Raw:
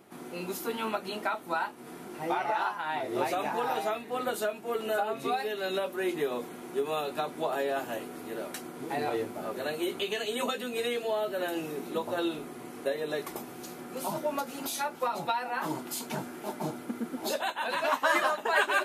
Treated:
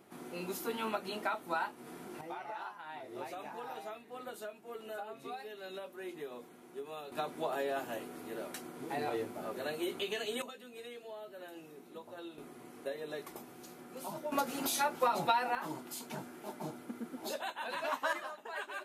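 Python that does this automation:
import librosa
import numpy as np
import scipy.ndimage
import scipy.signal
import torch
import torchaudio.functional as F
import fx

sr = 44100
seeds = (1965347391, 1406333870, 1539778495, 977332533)

y = fx.gain(x, sr, db=fx.steps((0.0, -4.0), (2.21, -13.5), (7.12, -5.0), (10.42, -16.5), (12.38, -9.0), (14.32, 0.5), (15.55, -8.0), (18.13, -16.0)))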